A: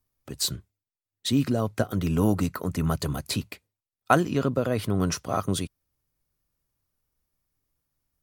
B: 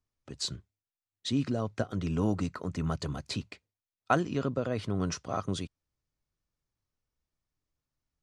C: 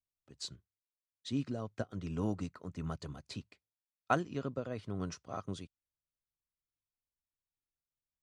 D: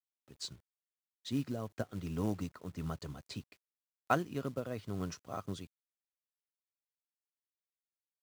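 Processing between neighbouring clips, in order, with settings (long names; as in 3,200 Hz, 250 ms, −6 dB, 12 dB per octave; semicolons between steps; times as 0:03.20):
low-pass filter 7,300 Hz 24 dB per octave; level −6 dB
expander for the loud parts 1.5 to 1, over −46 dBFS; level −3.5 dB
log-companded quantiser 6 bits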